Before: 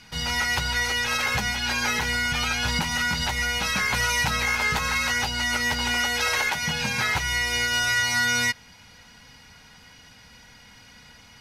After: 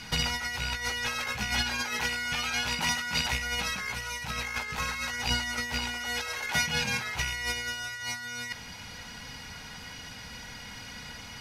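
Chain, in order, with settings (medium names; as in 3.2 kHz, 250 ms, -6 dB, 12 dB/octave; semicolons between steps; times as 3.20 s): rattle on loud lows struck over -29 dBFS, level -18 dBFS; 1.80–3.33 s: bass shelf 160 Hz -9.5 dB; compressor with a negative ratio -30 dBFS, ratio -0.5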